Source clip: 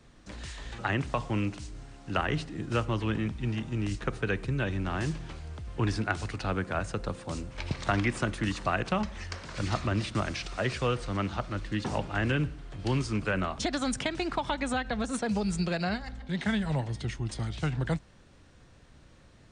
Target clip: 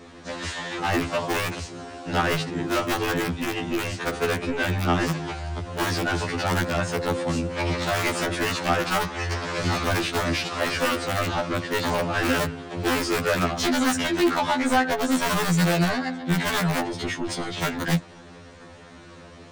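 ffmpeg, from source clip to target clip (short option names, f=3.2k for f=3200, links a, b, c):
-filter_complex "[0:a]tiltshelf=f=770:g=5.5,asplit=2[a][b];[b]highpass=f=720:p=1,volume=27dB,asoftclip=type=tanh:threshold=-12.5dB[c];[a][c]amix=inputs=2:normalize=0,lowpass=f=6.5k:p=1,volume=-6dB,acrossover=split=110|920[d][e][f];[e]aeval=exprs='(mod(5.96*val(0)+1,2)-1)/5.96':c=same[g];[d][g][f]amix=inputs=3:normalize=0,afftfilt=real='re*2*eq(mod(b,4),0)':imag='im*2*eq(mod(b,4),0)':win_size=2048:overlap=0.75"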